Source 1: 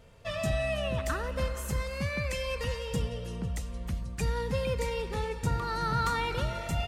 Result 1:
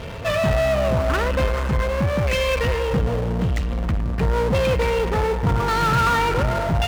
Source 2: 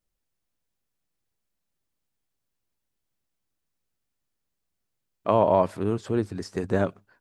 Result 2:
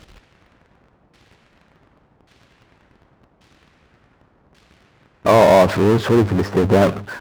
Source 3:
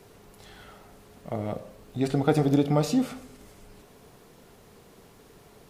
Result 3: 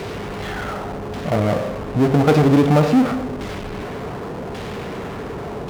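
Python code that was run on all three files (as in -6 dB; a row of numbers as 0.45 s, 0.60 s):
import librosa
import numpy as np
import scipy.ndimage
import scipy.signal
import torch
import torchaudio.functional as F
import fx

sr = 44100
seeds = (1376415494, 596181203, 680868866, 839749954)

y = fx.filter_lfo_lowpass(x, sr, shape='saw_down', hz=0.88, low_hz=870.0, high_hz=3800.0, q=0.91)
y = fx.power_curve(y, sr, exponent=0.5)
y = scipy.signal.sosfilt(scipy.signal.butter(2, 40.0, 'highpass', fs=sr, output='sos'), y)
y = y * 10.0 ** (-20 / 20.0) / np.sqrt(np.mean(np.square(y)))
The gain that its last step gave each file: +5.5 dB, +4.5 dB, +3.5 dB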